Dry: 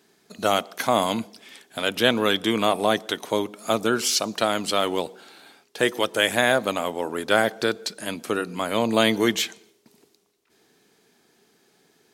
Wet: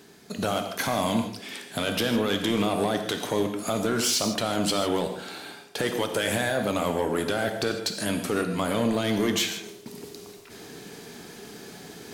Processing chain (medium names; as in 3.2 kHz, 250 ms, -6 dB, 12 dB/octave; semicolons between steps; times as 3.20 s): bass shelf 180 Hz +9.5 dB; reverse; upward compressor, threshold -40 dBFS; reverse; peak limiter -14.5 dBFS, peak gain reduction 11.5 dB; in parallel at +1.5 dB: compression, threshold -37 dBFS, peak gain reduction 16.5 dB; on the sum: saturation -17.5 dBFS, distortion -15 dB; gated-style reverb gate 180 ms flat, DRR 5.5 dB